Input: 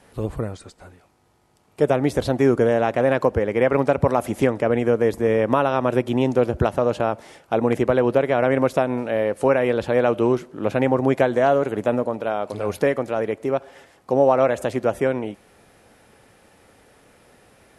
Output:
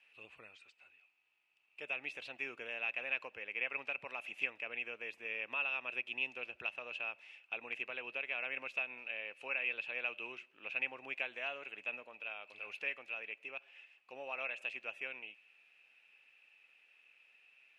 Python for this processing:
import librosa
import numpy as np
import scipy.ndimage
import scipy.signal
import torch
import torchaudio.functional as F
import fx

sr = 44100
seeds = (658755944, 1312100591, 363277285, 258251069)

y = fx.bandpass_q(x, sr, hz=2600.0, q=20.0)
y = y * 10.0 ** (8.0 / 20.0)